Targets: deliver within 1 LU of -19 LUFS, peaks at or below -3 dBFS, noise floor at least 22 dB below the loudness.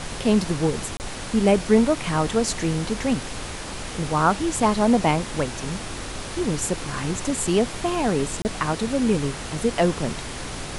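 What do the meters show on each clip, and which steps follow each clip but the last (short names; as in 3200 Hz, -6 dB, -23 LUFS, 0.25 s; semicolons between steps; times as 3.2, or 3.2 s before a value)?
dropouts 2; longest dropout 29 ms; noise floor -34 dBFS; noise floor target -46 dBFS; loudness -23.5 LUFS; peak -5.0 dBFS; loudness target -19.0 LUFS
-> interpolate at 0.97/8.42, 29 ms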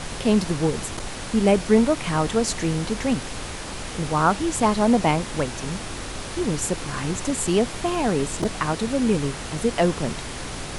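dropouts 0; noise floor -34 dBFS; noise floor target -46 dBFS
-> noise print and reduce 12 dB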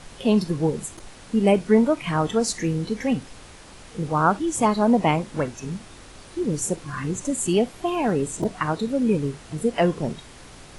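noise floor -45 dBFS; noise floor target -46 dBFS
-> noise print and reduce 6 dB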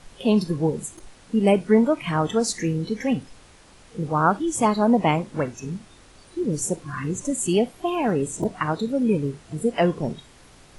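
noise floor -51 dBFS; loudness -23.5 LUFS; peak -5.5 dBFS; loudness target -19.0 LUFS
-> gain +4.5 dB; limiter -3 dBFS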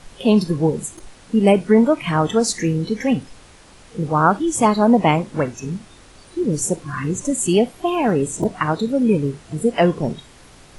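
loudness -19.0 LUFS; peak -3.0 dBFS; noise floor -46 dBFS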